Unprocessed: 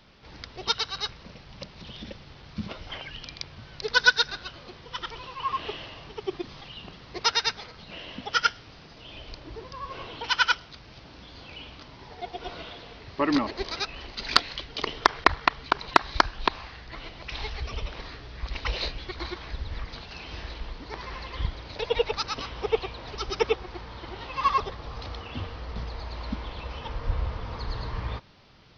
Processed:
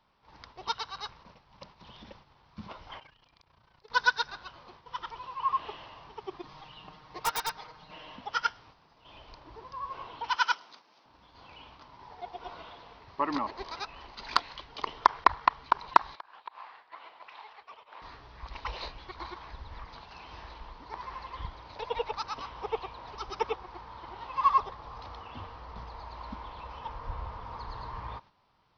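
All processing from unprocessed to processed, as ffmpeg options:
ffmpeg -i in.wav -filter_complex "[0:a]asettb=1/sr,asplit=3[link_01][link_02][link_03];[link_01]atrim=end=2.994[link_04];[link_02]atrim=start=2.99:end=3.9,asetpts=PTS-STARTPTS,afade=type=in:duration=0.004:curve=qsin,afade=type=out:start_time=0.906:duration=0.004:curve=qsin,acompressor=threshold=-39dB:ratio=6:attack=3.2:release=140:knee=1:detection=peak,tremolo=f=29:d=0.75[link_05];[link_03]atrim=start=3.896[link_06];[link_04][link_05]acrossfade=duration=0.004:curve1=hsin:curve2=qsin[link_07];[link_07][link_06]acrossfade=duration=0.004:curve1=qsin:curve2=hsin,asettb=1/sr,asplit=3[link_08][link_09][link_10];[link_08]atrim=end=6.434[link_11];[link_09]atrim=start=6.43:end=8.16,asetpts=PTS-STARTPTS,afade=type=in:duration=0.004:curve=qsin,afade=type=out:start_time=1.726:duration=0.004:curve=qsin,aecho=1:1:6.5:0.61,atrim=end_sample=76293,aeval=exprs='(mod(5.01*val(0)+1,2)-1)/5.01':channel_layout=same[link_12];[link_10]atrim=start=8.156[link_13];[link_11][link_12]acrossfade=duration=0.004:curve1=hsin:curve2=qsin[link_14];[link_14][link_13]acrossfade=duration=0.004:curve1=qsin:curve2=hsin,asettb=1/sr,asplit=3[link_15][link_16][link_17];[link_15]atrim=end=10.364[link_18];[link_16]atrim=start=10.36:end=11.06,asetpts=PTS-STARTPTS,afade=type=in:duration=0.004:curve=qsin,afade=type=out:start_time=0.696:duration=0.004:curve=qsin,highpass=frequency=220:width=0.5412,highpass=frequency=220:width=1.3066,equalizer=frequency=7900:width=0.72:gain=7.5[link_19];[link_17]atrim=start=11.056[link_20];[link_18][link_19]acrossfade=duration=0.004:curve1=hsin:curve2=qsin[link_21];[link_21][link_20]acrossfade=duration=0.004:curve1=qsin:curve2=hsin,asettb=1/sr,asplit=3[link_22][link_23][link_24];[link_22]atrim=end=16.154[link_25];[link_23]atrim=start=16.15:end=18.02,asetpts=PTS-STARTPTS,afade=type=in:duration=0.004:curve=qsin,afade=type=out:start_time=1.866:duration=0.004:curve=qsin,acompressor=threshold=-34dB:ratio=10:attack=3.2:release=140:knee=1:detection=peak,highpass=540,lowpass=3400[link_26];[link_24]atrim=start=18.016[link_27];[link_25][link_26]acrossfade=duration=0.004:curve1=hsin:curve2=qsin[link_28];[link_28][link_27]acrossfade=duration=0.004:curve1=qsin:curve2=hsin,equalizer=frequency=970:width_type=o:width=0.87:gain=13.5,agate=range=-7dB:threshold=-42dB:ratio=16:detection=peak,volume=-11dB" out.wav

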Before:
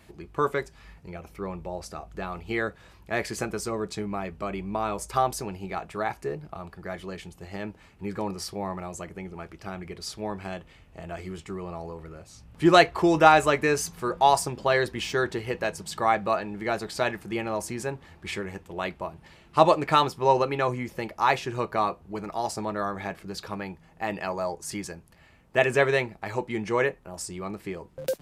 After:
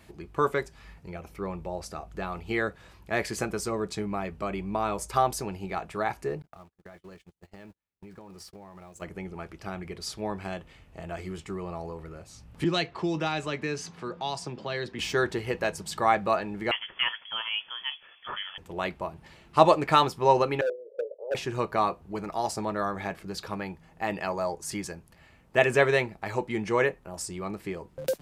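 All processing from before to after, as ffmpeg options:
ffmpeg -i in.wav -filter_complex "[0:a]asettb=1/sr,asplit=3[link_01][link_02][link_03];[link_01]atrim=end=6.424[link_04];[link_02]atrim=start=6.42:end=9.02,asetpts=PTS-STARTPTS,afade=type=in:duration=0.004:curve=qsin,afade=type=out:start_time=2.596:duration=0.004:curve=qsin,aeval=exprs='val(0)+0.5*0.00668*sgn(val(0))':channel_layout=same,agate=range=-49dB:threshold=-37dB:ratio=16:release=100:detection=peak,acompressor=threshold=-43dB:ratio=12:attack=3.2:release=140:knee=1:detection=peak[link_05];[link_03]atrim=start=9.016[link_06];[link_04][link_05]acrossfade=duration=0.004:curve1=hsin:curve2=qsin[link_07];[link_07][link_06]acrossfade=duration=0.004:curve1=qsin:curve2=hsin,asettb=1/sr,asplit=3[link_08][link_09][link_10];[link_08]atrim=end=12.644[link_11];[link_09]atrim=start=12.64:end=14.99,asetpts=PTS-STARTPTS,afade=type=in:duration=0.004:curve=qsin,afade=type=out:start_time=2.346:duration=0.004:curve=qsin,highpass=150,lowpass=4200,acrossover=split=250|3000[link_12][link_13][link_14];[link_13]acompressor=threshold=-42dB:ratio=2:attack=3.2:release=140:knee=2.83:detection=peak[link_15];[link_12][link_15][link_14]amix=inputs=3:normalize=0[link_16];[link_10]atrim=start=14.986[link_17];[link_11][link_16]acrossfade=duration=0.004:curve1=hsin:curve2=qsin[link_18];[link_18][link_17]acrossfade=duration=0.004:curve1=qsin:curve2=hsin,asettb=1/sr,asplit=3[link_19][link_20][link_21];[link_19]atrim=end=16.714[link_22];[link_20]atrim=start=16.71:end=18.58,asetpts=PTS-STARTPTS,afade=type=in:duration=0.004:curve=qsin,afade=type=out:start_time=1.866:duration=0.004:curve=qsin,lowshelf=frequency=310:gain=-10,volume=15dB,asoftclip=hard,volume=-15dB,lowpass=frequency=3000:width_type=q:width=0.5098,lowpass=frequency=3000:width_type=q:width=0.6013,lowpass=frequency=3000:width_type=q:width=0.9,lowpass=frequency=3000:width_type=q:width=2.563,afreqshift=-3500[link_23];[link_21]atrim=start=18.576[link_24];[link_22][link_23]acrossfade=duration=0.004:curve1=hsin:curve2=qsin[link_25];[link_25][link_24]acrossfade=duration=0.004:curve1=qsin:curve2=hsin,asettb=1/sr,asplit=3[link_26][link_27][link_28];[link_26]atrim=end=20.614[link_29];[link_27]atrim=start=20.61:end=21.35,asetpts=PTS-STARTPTS,afade=type=in:duration=0.004:curve=qsin,afade=type=out:start_time=0.736:duration=0.004:curve=qsin,acontrast=82,asuperpass=centerf=500:order=8:qfactor=2.9,asoftclip=type=hard:threshold=-23.5dB[link_30];[link_28]atrim=start=21.346[link_31];[link_29][link_30]acrossfade=duration=0.004:curve1=hsin:curve2=qsin[link_32];[link_32][link_31]acrossfade=duration=0.004:curve1=qsin:curve2=hsin" out.wav

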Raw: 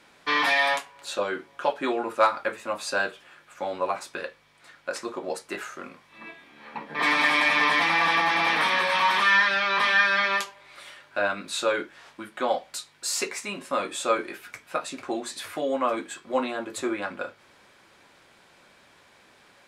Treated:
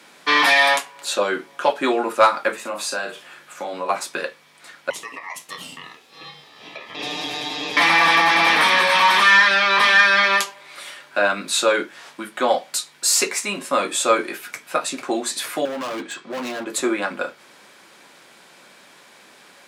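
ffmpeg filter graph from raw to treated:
ffmpeg -i in.wav -filter_complex "[0:a]asettb=1/sr,asplit=3[link_01][link_02][link_03];[link_01]atrim=end=2.614[link_04];[link_02]atrim=start=2.61:end=3.89,asetpts=PTS-STARTPTS,afade=type=in:duration=0.004:curve=qsin,afade=type=out:start_time=1.276:duration=0.004:curve=qsin,acompressor=threshold=-36dB:ratio=2:attack=3.2:release=140:knee=1:detection=peak,asplit=2[link_05][link_06];[link_06]adelay=39,volume=-7.5dB[link_07];[link_05][link_07]amix=inputs=2:normalize=0,atrim=end_sample=56448[link_08];[link_03]atrim=start=3.886[link_09];[link_04][link_08]acrossfade=duration=0.004:curve1=hsin:curve2=qsin[link_10];[link_10][link_09]acrossfade=duration=0.004:curve1=qsin:curve2=hsin,asettb=1/sr,asplit=3[link_11][link_12][link_13];[link_11]atrim=end=4.904[link_14];[link_12]atrim=start=4.9:end=7.77,asetpts=PTS-STARTPTS,afade=type=in:duration=0.004:curve=qsin,afade=type=out:start_time=2.866:duration=0.004:curve=qsin,acompressor=threshold=-39dB:ratio=2:attack=3.2:release=140:knee=1:detection=peak,aeval=exprs='val(0)*sin(2*PI*1500*n/s)':channel_layout=same[link_15];[link_13]atrim=start=7.766[link_16];[link_14][link_15]acrossfade=duration=0.004:curve1=hsin:curve2=qsin[link_17];[link_17][link_16]acrossfade=duration=0.004:curve1=qsin:curve2=hsin,asettb=1/sr,asplit=3[link_18][link_19][link_20];[link_18]atrim=end=15.654[link_21];[link_19]atrim=start=15.65:end=16.67,asetpts=PTS-STARTPTS,afade=type=in:duration=0.004:curve=qsin,afade=type=out:start_time=1.016:duration=0.004:curve=qsin,lowpass=5200,acompressor=threshold=-26dB:ratio=2:attack=3.2:release=140:knee=1:detection=peak,asoftclip=type=hard:threshold=-33dB[link_22];[link_20]atrim=start=16.666[link_23];[link_21][link_22]acrossfade=duration=0.004:curve1=hsin:curve2=qsin[link_24];[link_24][link_23]acrossfade=duration=0.004:curve1=qsin:curve2=hsin,highpass=frequency=150:width=0.5412,highpass=frequency=150:width=1.3066,highshelf=frequency=5300:gain=7,acontrast=74" out.wav

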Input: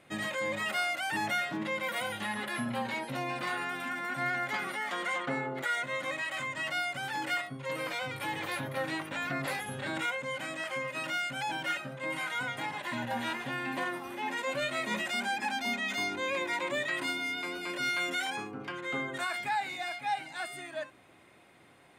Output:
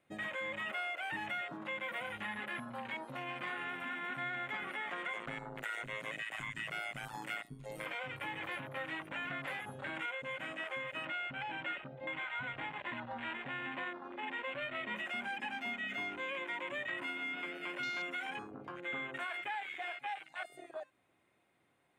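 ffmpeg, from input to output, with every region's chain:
ffmpeg -i in.wav -filter_complex "[0:a]asettb=1/sr,asplit=3[link_01][link_02][link_03];[link_01]atrim=end=5.134[link_04];[link_02]atrim=start=5.13:end=7.86,asetpts=PTS-STARTPTS,afade=type=in:duration=0.004:curve=qsin,afade=type=out:start_time=2.726:duration=0.004:curve=qsin,highpass=58,tremolo=f=110:d=0.71,bass=frequency=250:gain=8,treble=frequency=4000:gain=13[link_05];[link_03]atrim=start=7.856[link_06];[link_04][link_05]acrossfade=duration=0.004:curve1=hsin:curve2=qsin[link_07];[link_07][link_06]acrossfade=duration=0.004:curve1=qsin:curve2=hsin,asettb=1/sr,asplit=3[link_08][link_09][link_10];[link_08]atrim=end=11.054[link_11];[link_09]atrim=start=11.05:end=14.96,asetpts=PTS-STARTPTS,afade=type=in:duration=0.004:curve=qsin,afade=type=out:start_time=3.906:duration=0.004:curve=qsin,lowpass=frequency=4300:width=0.5412,lowpass=frequency=4300:width=1.3066,aeval=exprs='val(0)+0.00112*(sin(2*PI*50*n/s)+sin(2*PI*2*50*n/s)/2+sin(2*PI*3*50*n/s)/3+sin(2*PI*4*50*n/s)/4+sin(2*PI*5*50*n/s)/5)':channel_layout=same[link_12];[link_10]atrim=start=14.956[link_13];[link_11][link_12]acrossfade=duration=0.004:curve1=hsin:curve2=qsin[link_14];[link_14][link_13]acrossfade=duration=0.004:curve1=qsin:curve2=hsin,afwtdn=0.0158,equalizer=frequency=5100:width_type=o:width=0.64:gain=-4,acrossover=split=640|1800[link_15][link_16][link_17];[link_15]acompressor=threshold=-50dB:ratio=4[link_18];[link_16]acompressor=threshold=-48dB:ratio=4[link_19];[link_17]acompressor=threshold=-42dB:ratio=4[link_20];[link_18][link_19][link_20]amix=inputs=3:normalize=0,volume=1dB" out.wav

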